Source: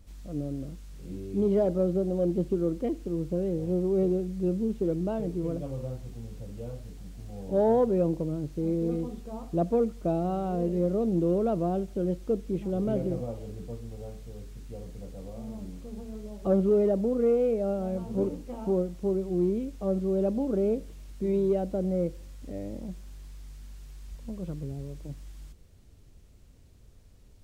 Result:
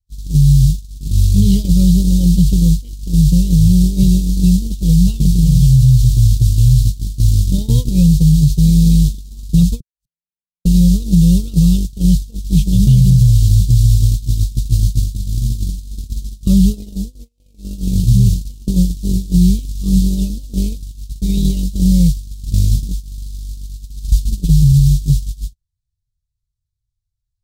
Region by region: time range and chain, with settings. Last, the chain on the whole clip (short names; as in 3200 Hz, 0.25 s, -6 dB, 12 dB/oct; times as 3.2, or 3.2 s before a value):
9.8–10.65 tilt +2 dB/oct + flipped gate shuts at -35 dBFS, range -41 dB
17.38–20 dynamic EQ 130 Hz, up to +4 dB, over -49 dBFS, Q 2.6 + upward compressor, threshold -39 dBFS + notch 570 Hz, Q 16
whole clip: elliptic band-stop 130–3800 Hz, stop band 40 dB; gate -42 dBFS, range -55 dB; maximiser +35 dB; gain -1 dB